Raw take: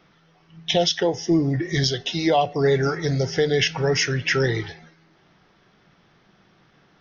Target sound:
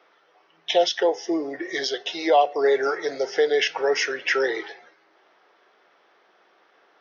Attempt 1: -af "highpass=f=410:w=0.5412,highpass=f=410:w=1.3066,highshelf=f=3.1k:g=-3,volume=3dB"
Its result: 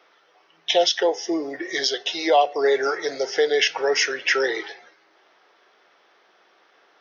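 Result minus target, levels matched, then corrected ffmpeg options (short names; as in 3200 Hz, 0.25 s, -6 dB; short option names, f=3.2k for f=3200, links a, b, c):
8000 Hz band +4.5 dB
-af "highpass=f=410:w=0.5412,highpass=f=410:w=1.3066,highshelf=f=3.1k:g=-10.5,volume=3dB"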